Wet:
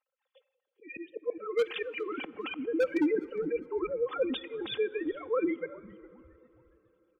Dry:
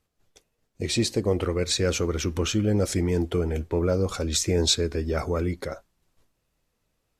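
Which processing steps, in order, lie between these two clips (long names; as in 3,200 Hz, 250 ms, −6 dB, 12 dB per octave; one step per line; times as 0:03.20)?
three sine waves on the formant tracks
comb filter 3.8 ms, depth 80%
volume swells 353 ms
gate on every frequency bin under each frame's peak −25 dB strong
wave folding −17.5 dBFS
echo with shifted repeats 409 ms, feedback 39%, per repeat −130 Hz, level −22.5 dB
dense smooth reverb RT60 4.1 s, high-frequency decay 0.45×, DRR 19 dB
level −2.5 dB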